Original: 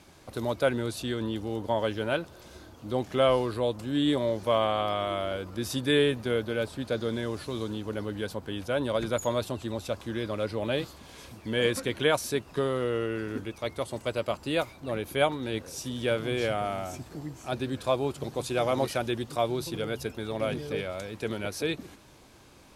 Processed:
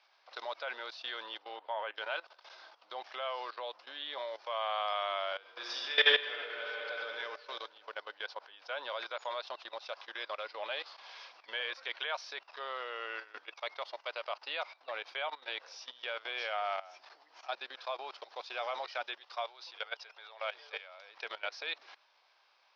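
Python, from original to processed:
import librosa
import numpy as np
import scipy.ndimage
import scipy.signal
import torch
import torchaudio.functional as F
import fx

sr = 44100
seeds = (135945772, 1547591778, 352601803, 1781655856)

y = fx.lowpass(x, sr, hz=fx.line((1.38, 5200.0), (1.95, 2400.0)), slope=24, at=(1.38, 1.95), fade=0.02)
y = fx.reverb_throw(y, sr, start_s=5.4, length_s=1.24, rt60_s=2.9, drr_db=-6.5)
y = fx.highpass(y, sr, hz=470.0, slope=12, at=(19.2, 20.98))
y = scipy.signal.sosfilt(scipy.signal.ellip(4, 1.0, 40, 5300.0, 'lowpass', fs=sr, output='sos'), y)
y = fx.level_steps(y, sr, step_db=17)
y = scipy.signal.sosfilt(scipy.signal.butter(4, 710.0, 'highpass', fs=sr, output='sos'), y)
y = y * librosa.db_to_amplitude(3.0)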